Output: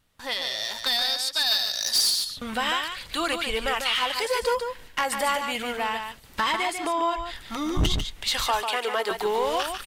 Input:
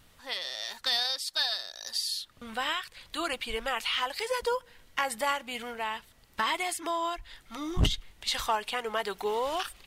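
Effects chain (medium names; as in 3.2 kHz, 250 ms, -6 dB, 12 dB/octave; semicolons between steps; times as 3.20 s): gate with hold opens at -46 dBFS; in parallel at +2 dB: compression, threshold -42 dBFS, peak gain reduction 21 dB; 1.46–2.10 s: on the sum: peaking EQ 9.7 kHz +9 dB 2.9 oct; saturation -20.5 dBFS, distortion -14 dB; 6.52–7.26 s: treble shelf 5.4 kHz -10 dB; 8.47–9.11 s: high-pass 280 Hz 24 dB/octave; delay 146 ms -6.5 dB; trim +4 dB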